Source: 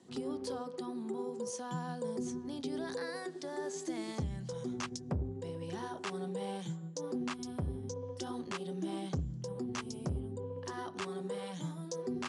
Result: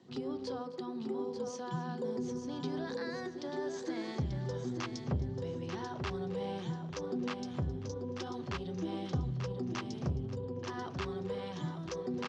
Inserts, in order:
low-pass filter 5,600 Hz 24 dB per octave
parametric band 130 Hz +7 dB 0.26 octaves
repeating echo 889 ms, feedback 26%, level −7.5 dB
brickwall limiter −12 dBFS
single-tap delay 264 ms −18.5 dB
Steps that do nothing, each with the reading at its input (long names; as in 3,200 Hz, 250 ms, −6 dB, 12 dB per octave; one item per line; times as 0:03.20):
brickwall limiter −12 dBFS: peak of its input −22.5 dBFS